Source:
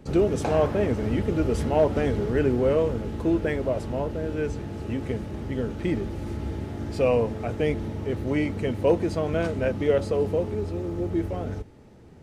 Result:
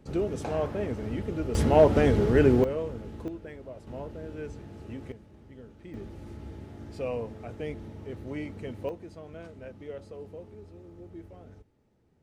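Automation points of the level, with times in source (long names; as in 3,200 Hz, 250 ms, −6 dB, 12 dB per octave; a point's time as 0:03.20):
−7.5 dB
from 0:01.55 +2.5 dB
from 0:02.64 −9.5 dB
from 0:03.28 −17 dB
from 0:03.87 −10.5 dB
from 0:05.12 −19.5 dB
from 0:05.94 −11 dB
from 0:08.89 −18.5 dB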